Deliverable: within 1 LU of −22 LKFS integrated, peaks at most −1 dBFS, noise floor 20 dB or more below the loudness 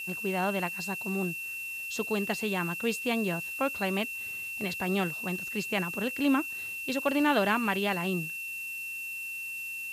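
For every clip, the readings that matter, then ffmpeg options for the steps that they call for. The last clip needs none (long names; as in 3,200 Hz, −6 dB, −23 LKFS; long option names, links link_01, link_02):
interfering tone 2,700 Hz; level of the tone −35 dBFS; background noise floor −38 dBFS; target noise floor −51 dBFS; integrated loudness −30.5 LKFS; sample peak −12.5 dBFS; target loudness −22.0 LKFS
→ -af "bandreject=frequency=2700:width=30"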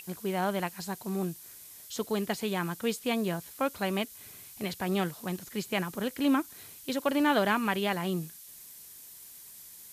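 interfering tone none found; background noise floor −50 dBFS; target noise floor −51 dBFS
→ -af "afftdn=noise_reduction=6:noise_floor=-50"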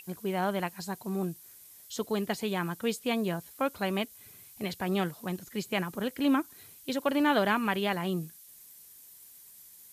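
background noise floor −53 dBFS; integrated loudness −31.5 LKFS; sample peak −13.0 dBFS; target loudness −22.0 LKFS
→ -af "volume=9.5dB"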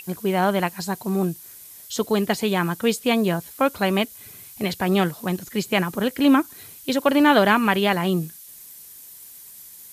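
integrated loudness −22.0 LKFS; sample peak −3.5 dBFS; background noise floor −44 dBFS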